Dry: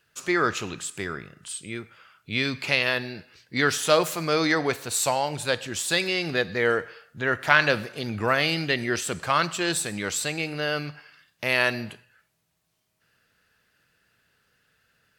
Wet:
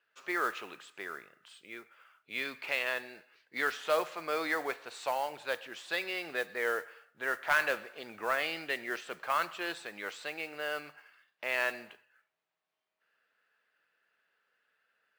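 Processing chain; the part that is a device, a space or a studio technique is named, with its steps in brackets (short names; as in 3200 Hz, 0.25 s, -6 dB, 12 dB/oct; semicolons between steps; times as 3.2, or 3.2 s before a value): carbon microphone (BPF 500–2700 Hz; soft clip -9 dBFS, distortion -21 dB; modulation noise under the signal 20 dB); gain -6.5 dB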